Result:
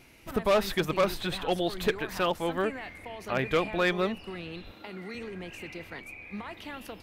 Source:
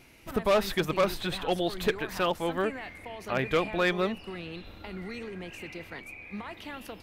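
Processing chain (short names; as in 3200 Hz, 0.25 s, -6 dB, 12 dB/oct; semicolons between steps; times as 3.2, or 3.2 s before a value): 4.72–5.15 HPF 190 Hz 12 dB/oct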